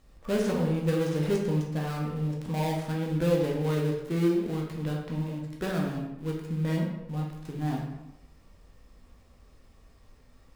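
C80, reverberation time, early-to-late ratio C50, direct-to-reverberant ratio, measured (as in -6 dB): 6.5 dB, 0.90 s, 3.5 dB, -2.0 dB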